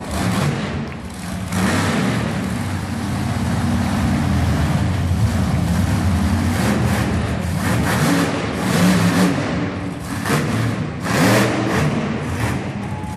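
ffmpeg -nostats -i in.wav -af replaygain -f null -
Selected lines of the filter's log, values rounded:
track_gain = +1.0 dB
track_peak = 0.369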